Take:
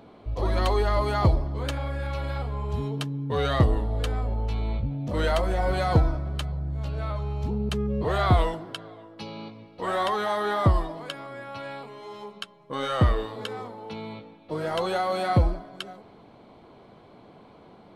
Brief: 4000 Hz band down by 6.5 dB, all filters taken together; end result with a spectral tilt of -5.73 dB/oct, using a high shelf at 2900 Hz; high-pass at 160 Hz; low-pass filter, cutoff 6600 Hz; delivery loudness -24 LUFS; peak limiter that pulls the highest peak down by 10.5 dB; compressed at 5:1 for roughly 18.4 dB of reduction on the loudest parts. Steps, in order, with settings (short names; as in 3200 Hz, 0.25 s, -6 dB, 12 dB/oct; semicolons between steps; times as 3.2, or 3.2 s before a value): HPF 160 Hz; LPF 6600 Hz; high shelf 2900 Hz -3.5 dB; bell 4000 Hz -5.5 dB; compressor 5:1, threshold -40 dBFS; gain +21.5 dB; limiter -14.5 dBFS